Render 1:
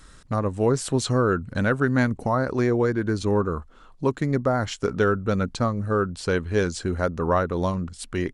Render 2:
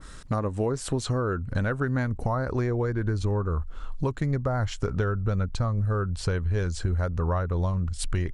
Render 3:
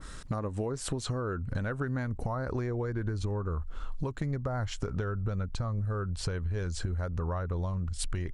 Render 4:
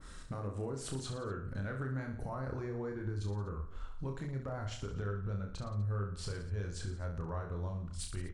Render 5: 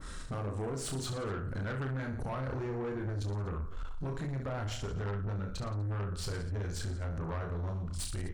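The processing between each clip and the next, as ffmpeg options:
-af "asubboost=boost=7:cutoff=94,acompressor=threshold=0.0398:ratio=6,adynamicequalizer=threshold=0.00355:dfrequency=2000:dqfactor=0.7:tfrequency=2000:tqfactor=0.7:attack=5:release=100:ratio=0.375:range=2.5:mode=cutabove:tftype=highshelf,volume=1.68"
-af "acompressor=threshold=0.0355:ratio=6"
-af "asoftclip=type=tanh:threshold=0.106,aecho=1:1:30|67.5|114.4|173|246.2:0.631|0.398|0.251|0.158|0.1,volume=0.398"
-af "asoftclip=type=tanh:threshold=0.0106,volume=2.37"

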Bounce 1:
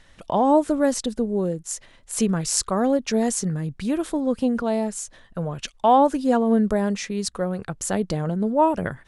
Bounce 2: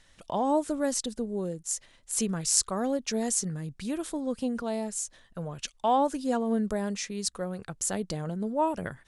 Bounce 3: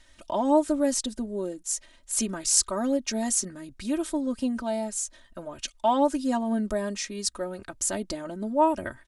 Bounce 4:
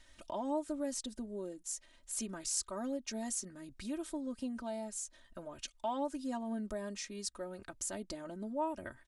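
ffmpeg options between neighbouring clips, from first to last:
-af "equalizer=f=8100:t=o:w=2.3:g=8,volume=0.376"
-af "aecho=1:1:3.2:0.85"
-af "acompressor=threshold=0.00562:ratio=1.5,volume=0.596"

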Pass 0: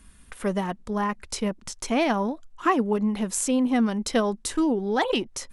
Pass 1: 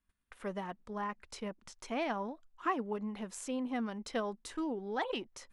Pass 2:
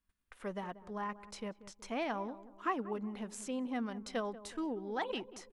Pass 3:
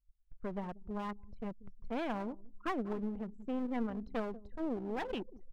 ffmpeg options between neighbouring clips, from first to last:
-af "agate=range=0.126:threshold=0.00562:ratio=16:detection=peak,lowpass=f=2600:p=1,lowshelf=f=420:g=-8,volume=0.376"
-filter_complex "[0:a]asplit=2[s0][s1];[s1]adelay=186,lowpass=f=920:p=1,volume=0.2,asplit=2[s2][s3];[s3]adelay=186,lowpass=f=920:p=1,volume=0.48,asplit=2[s4][s5];[s5]adelay=186,lowpass=f=920:p=1,volume=0.48,asplit=2[s6][s7];[s7]adelay=186,lowpass=f=920:p=1,volume=0.48,asplit=2[s8][s9];[s9]adelay=186,lowpass=f=920:p=1,volume=0.48[s10];[s0][s2][s4][s6][s8][s10]amix=inputs=6:normalize=0,volume=0.841"
-af "aemphasis=mode=reproduction:type=bsi,anlmdn=0.251,aeval=exprs='clip(val(0),-1,0.00891)':c=same"

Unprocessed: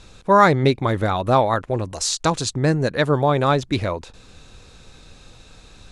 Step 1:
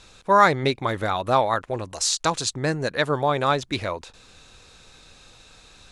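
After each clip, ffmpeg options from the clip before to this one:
-af "lowshelf=f=480:g=-9"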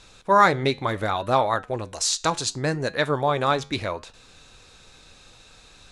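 -af "flanger=delay=6.9:depth=3.5:regen=-83:speed=0.68:shape=sinusoidal,volume=1.58"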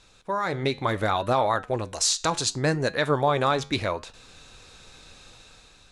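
-af "alimiter=limit=0.237:level=0:latency=1:release=64,dynaudnorm=f=190:g=7:m=2.37,volume=0.501"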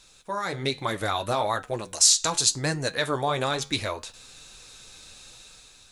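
-af "flanger=delay=4.9:depth=5.8:regen=-47:speed=1.1:shape=triangular,crystalizer=i=3:c=0"

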